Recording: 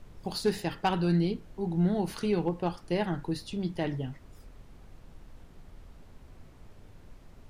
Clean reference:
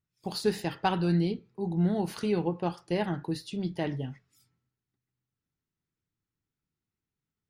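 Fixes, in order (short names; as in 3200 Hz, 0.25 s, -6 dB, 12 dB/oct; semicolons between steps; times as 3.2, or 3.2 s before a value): clip repair -18 dBFS; noise print and reduce 30 dB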